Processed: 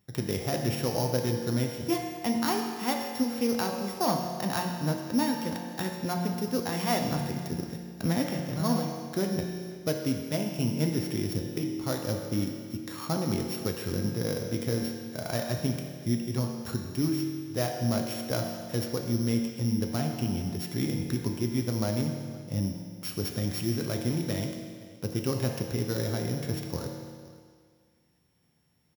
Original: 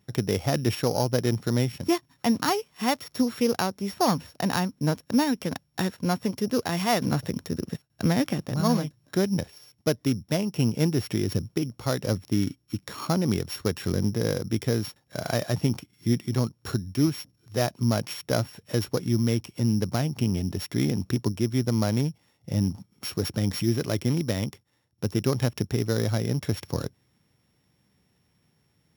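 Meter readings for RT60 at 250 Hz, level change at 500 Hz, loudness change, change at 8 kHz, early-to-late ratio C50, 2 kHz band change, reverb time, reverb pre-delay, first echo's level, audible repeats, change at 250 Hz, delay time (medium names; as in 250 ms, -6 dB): 1.8 s, -3.5 dB, -3.5 dB, -2.0 dB, 3.5 dB, -3.5 dB, 1.9 s, 6 ms, -21.5 dB, 1, -3.5 dB, 519 ms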